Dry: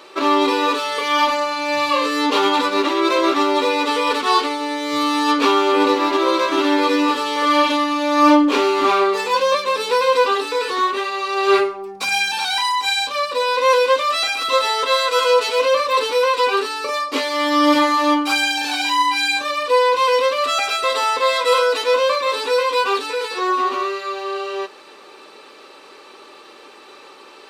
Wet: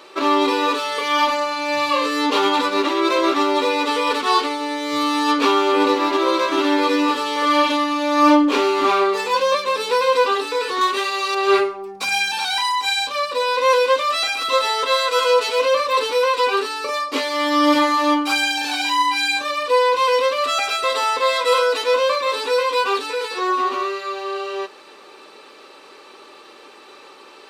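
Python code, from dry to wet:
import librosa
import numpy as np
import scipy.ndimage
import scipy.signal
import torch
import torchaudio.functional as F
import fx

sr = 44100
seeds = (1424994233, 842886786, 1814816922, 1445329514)

y = fx.high_shelf(x, sr, hz=3300.0, db=10.0, at=(10.81, 11.35))
y = F.gain(torch.from_numpy(y), -1.0).numpy()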